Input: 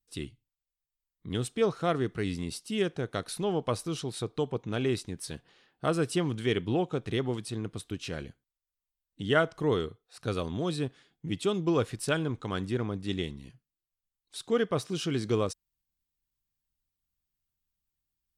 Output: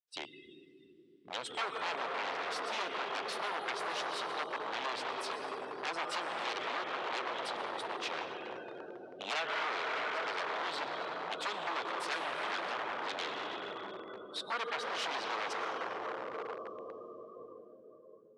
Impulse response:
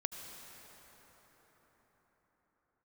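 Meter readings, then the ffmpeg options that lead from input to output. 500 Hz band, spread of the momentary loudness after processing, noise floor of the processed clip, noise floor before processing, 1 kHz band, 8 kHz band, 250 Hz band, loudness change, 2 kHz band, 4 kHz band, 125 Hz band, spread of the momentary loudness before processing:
-9.5 dB, 11 LU, -59 dBFS, under -85 dBFS, +3.0 dB, -7.5 dB, -17.5 dB, -6.0 dB, +2.0 dB, 0.0 dB, -29.5 dB, 12 LU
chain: -filter_complex "[1:a]atrim=start_sample=2205,asetrate=33516,aresample=44100[s0];[0:a][s0]afir=irnorm=-1:irlink=0,afftdn=nr=23:nf=-48,acompressor=threshold=0.0398:ratio=6,aeval=exprs='0.0237*(abs(mod(val(0)/0.0237+3,4)-2)-1)':c=same,highpass=760,lowpass=4500,volume=2"

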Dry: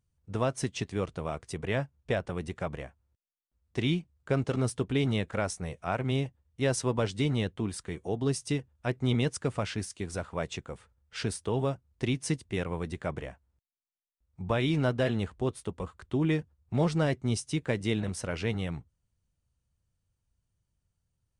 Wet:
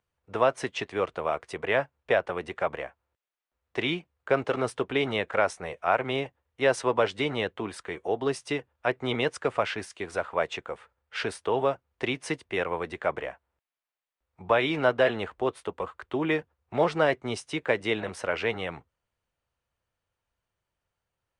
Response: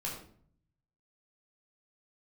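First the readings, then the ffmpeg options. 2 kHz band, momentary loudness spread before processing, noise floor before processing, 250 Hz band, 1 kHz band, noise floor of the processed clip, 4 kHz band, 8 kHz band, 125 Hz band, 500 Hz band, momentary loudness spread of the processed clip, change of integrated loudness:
+8.0 dB, 9 LU, -82 dBFS, -2.5 dB, +8.5 dB, under -85 dBFS, +3.5 dB, -5.0 dB, -9.0 dB, +6.0 dB, 10 LU, +3.0 dB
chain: -filter_complex "[0:a]acrossover=split=400 3200:gain=0.112 1 0.178[s0][s1][s2];[s0][s1][s2]amix=inputs=3:normalize=0,volume=2.82"

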